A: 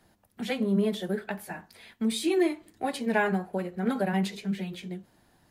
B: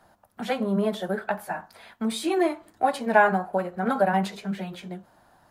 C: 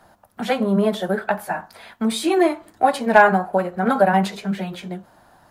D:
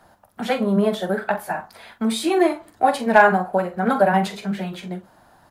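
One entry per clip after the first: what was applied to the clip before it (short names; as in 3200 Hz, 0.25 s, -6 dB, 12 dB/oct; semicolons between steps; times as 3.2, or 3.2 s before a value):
band shelf 930 Hz +10 dB
hard clip -8 dBFS, distortion -30 dB; gain +6 dB
doubler 44 ms -11 dB; gain -1 dB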